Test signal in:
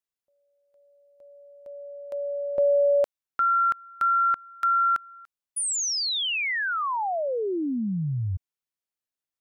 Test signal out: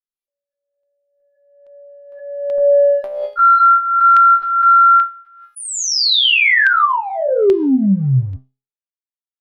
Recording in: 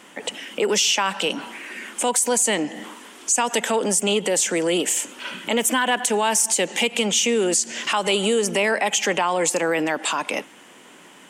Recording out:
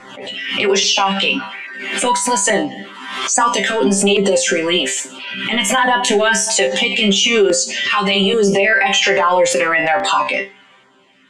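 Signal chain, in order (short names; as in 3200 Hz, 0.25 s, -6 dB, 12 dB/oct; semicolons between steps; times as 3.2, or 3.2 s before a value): per-bin expansion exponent 1.5; transient shaper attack -10 dB, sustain +4 dB; LPF 4100 Hz 12 dB/oct; low shelf 320 Hz -5.5 dB; resonator bank C3 fifth, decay 0.26 s; LFO notch saw down 1.2 Hz 210–3200 Hz; de-hum 416.4 Hz, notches 14; maximiser +34 dB; backwards sustainer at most 51 dB/s; gain -4.5 dB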